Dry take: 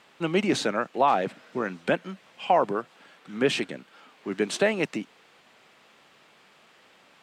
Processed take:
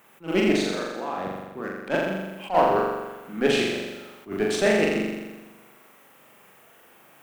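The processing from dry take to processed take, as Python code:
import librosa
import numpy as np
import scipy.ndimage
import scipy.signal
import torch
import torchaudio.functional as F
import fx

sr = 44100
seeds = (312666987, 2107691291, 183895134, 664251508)

p1 = fx.wiener(x, sr, points=9)
p2 = fx.dmg_noise_colour(p1, sr, seeds[0], colour='violet', level_db=-62.0)
p3 = fx.level_steps(p2, sr, step_db=17, at=(0.52, 1.9))
p4 = fx.cheby_harmonics(p3, sr, harmonics=(6,), levels_db=(-24,), full_scale_db=-8.5)
p5 = p4 + fx.room_flutter(p4, sr, wall_m=7.2, rt60_s=1.2, dry=0)
y = fx.attack_slew(p5, sr, db_per_s=250.0)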